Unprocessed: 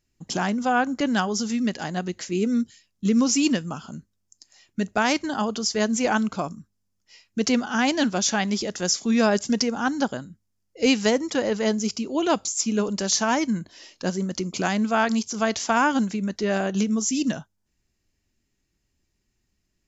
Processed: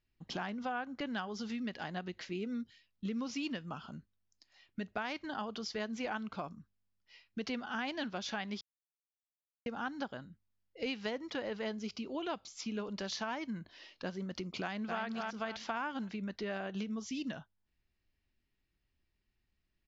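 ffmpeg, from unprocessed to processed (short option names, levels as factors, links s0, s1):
-filter_complex "[0:a]asplit=2[s0][s1];[s1]afade=t=in:st=14.62:d=0.01,afade=t=out:st=15.04:d=0.01,aecho=0:1:260|520|780|1040:0.595662|0.208482|0.0729686|0.025539[s2];[s0][s2]amix=inputs=2:normalize=0,asplit=3[s3][s4][s5];[s3]atrim=end=8.61,asetpts=PTS-STARTPTS,afade=t=out:st=8.606:d=0.004:c=hsin[s6];[s4]atrim=start=8.61:end=9.66,asetpts=PTS-STARTPTS,volume=0[s7];[s5]atrim=start=9.66,asetpts=PTS-STARTPTS,afade=t=in:d=0.004:c=hsin[s8];[s6][s7][s8]concat=n=3:v=0:a=1,lowpass=f=4100:w=0.5412,lowpass=f=4100:w=1.3066,equalizer=f=240:w=0.42:g=-5.5,acompressor=threshold=0.0251:ratio=3,volume=0.562"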